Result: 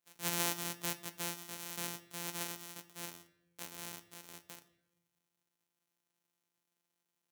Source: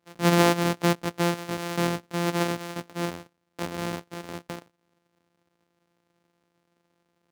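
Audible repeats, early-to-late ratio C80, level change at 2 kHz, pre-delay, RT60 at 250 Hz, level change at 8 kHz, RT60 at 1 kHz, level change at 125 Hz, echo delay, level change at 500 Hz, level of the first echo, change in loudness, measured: none, 17.0 dB, -13.5 dB, 5 ms, 1.2 s, -3.0 dB, 0.80 s, -22.0 dB, none, -22.0 dB, none, -13.0 dB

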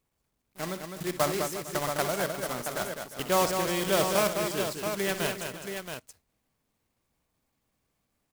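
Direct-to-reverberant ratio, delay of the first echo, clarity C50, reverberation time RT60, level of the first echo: none, 62 ms, none, none, -12.0 dB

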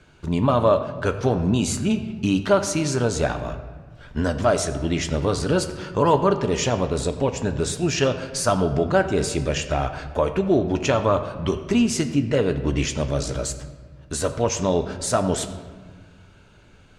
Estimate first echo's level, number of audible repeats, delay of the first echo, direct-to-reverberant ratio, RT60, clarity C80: none, none, none, 7.5 dB, 1.6 s, 12.0 dB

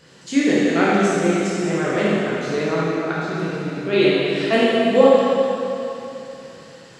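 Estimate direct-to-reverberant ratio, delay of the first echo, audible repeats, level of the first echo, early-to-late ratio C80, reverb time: -8.0 dB, none, none, none, -2.5 dB, 3.0 s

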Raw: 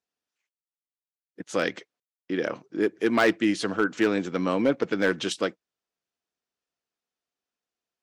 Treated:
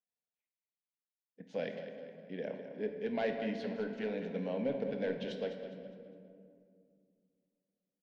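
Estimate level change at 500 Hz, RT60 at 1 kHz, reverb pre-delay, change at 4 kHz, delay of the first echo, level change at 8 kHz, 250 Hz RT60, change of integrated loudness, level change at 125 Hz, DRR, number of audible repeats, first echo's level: -9.5 dB, 2.1 s, 23 ms, -16.0 dB, 0.205 s, under -25 dB, 3.3 s, -12.5 dB, -8.5 dB, 4.0 dB, 3, -11.0 dB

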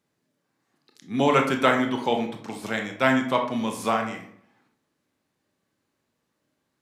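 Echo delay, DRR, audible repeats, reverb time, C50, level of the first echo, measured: none, 3.0 dB, none, 0.60 s, 8.0 dB, none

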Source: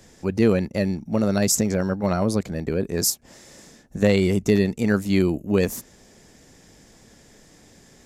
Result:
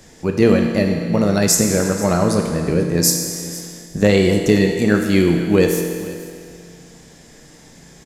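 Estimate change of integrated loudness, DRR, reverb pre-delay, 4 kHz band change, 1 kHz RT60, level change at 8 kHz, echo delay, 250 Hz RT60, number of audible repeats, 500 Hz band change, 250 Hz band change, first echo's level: +5.5 dB, 2.5 dB, 6 ms, +7.0 dB, 2.1 s, +7.0 dB, 0.487 s, 2.1 s, 1, +6.0 dB, +5.5 dB, -19.0 dB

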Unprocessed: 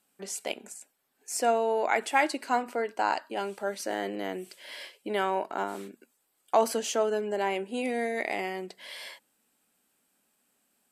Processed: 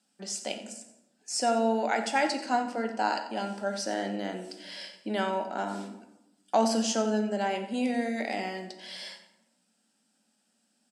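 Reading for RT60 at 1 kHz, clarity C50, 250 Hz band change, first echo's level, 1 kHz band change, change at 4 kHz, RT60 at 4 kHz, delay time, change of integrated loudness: 0.95 s, 8.5 dB, +6.0 dB, -13.5 dB, -0.5 dB, +3.0 dB, 0.55 s, 89 ms, -0.5 dB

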